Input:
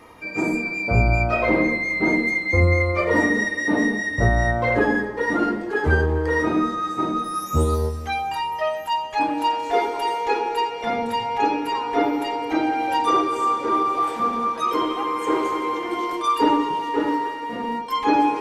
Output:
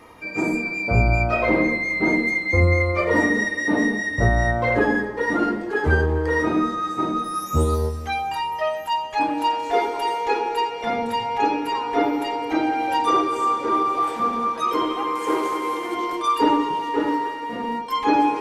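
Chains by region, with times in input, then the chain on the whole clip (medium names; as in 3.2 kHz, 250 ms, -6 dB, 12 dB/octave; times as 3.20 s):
15.15–15.95 s: CVSD coder 64 kbps + bass shelf 120 Hz -8.5 dB
whole clip: none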